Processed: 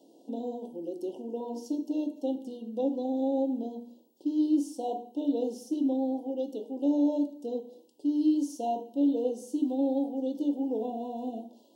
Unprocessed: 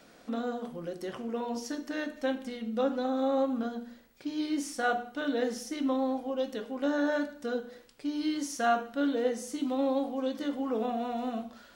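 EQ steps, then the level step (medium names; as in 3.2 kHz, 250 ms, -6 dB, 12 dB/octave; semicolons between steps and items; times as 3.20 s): resonant high-pass 310 Hz, resonance Q 3.6; brick-wall FIR band-stop 1–2.7 kHz; peaking EQ 2.9 kHz -7 dB 2.6 oct; -4.0 dB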